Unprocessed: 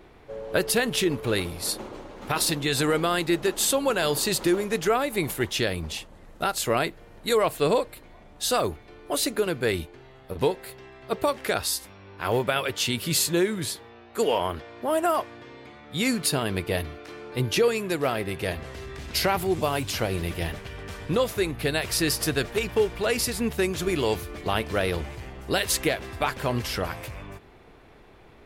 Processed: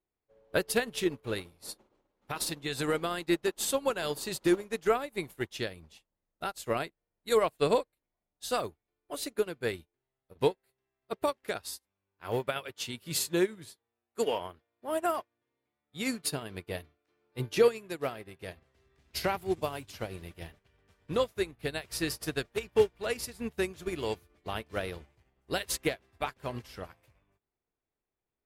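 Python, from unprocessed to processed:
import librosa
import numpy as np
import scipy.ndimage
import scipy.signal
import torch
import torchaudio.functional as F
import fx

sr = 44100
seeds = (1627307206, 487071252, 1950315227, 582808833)

y = fx.upward_expand(x, sr, threshold_db=-44.0, expansion=2.5)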